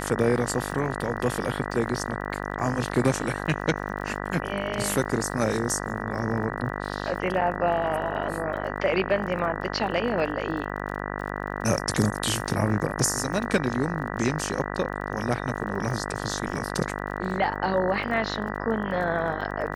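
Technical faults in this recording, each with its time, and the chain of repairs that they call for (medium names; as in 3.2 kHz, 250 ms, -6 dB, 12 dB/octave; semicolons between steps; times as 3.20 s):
buzz 50 Hz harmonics 39 -32 dBFS
crackle 30 per s -36 dBFS
7.41–7.42 s: dropout 6.4 ms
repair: de-click; de-hum 50 Hz, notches 39; interpolate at 7.41 s, 6.4 ms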